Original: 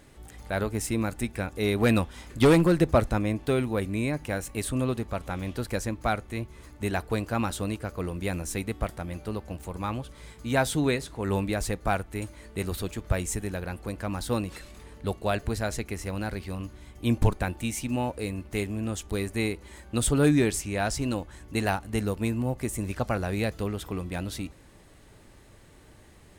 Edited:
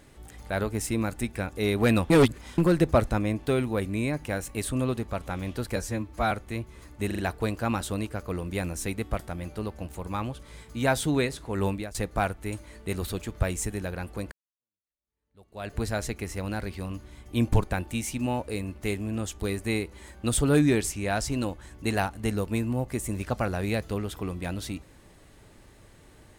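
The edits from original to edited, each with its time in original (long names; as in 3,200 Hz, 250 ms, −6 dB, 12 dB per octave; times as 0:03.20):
0:02.10–0:02.58: reverse
0:05.76–0:06.13: time-stretch 1.5×
0:06.88: stutter 0.04 s, 4 plays
0:11.37–0:11.64: fade out, to −19.5 dB
0:14.01–0:15.46: fade in exponential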